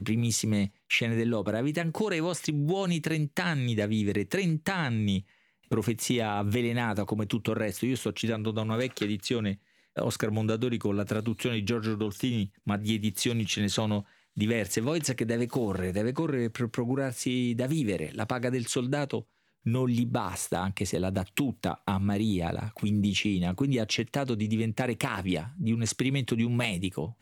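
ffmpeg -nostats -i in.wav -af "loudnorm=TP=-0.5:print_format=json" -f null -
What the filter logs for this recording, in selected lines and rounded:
"input_i" : "-29.4",
"input_tp" : "-11.7",
"input_lra" : "1.8",
"input_thresh" : "-39.5",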